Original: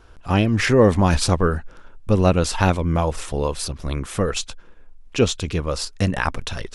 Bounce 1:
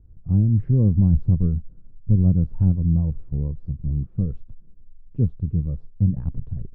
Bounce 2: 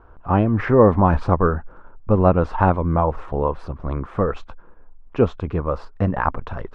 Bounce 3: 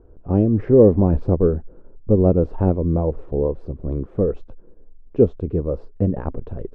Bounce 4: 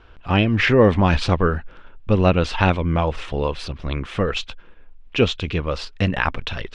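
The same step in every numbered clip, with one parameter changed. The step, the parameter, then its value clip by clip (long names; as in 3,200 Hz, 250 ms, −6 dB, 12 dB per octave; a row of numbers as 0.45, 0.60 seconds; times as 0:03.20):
low-pass with resonance, frequency: 150, 1,100, 440, 3,000 Hertz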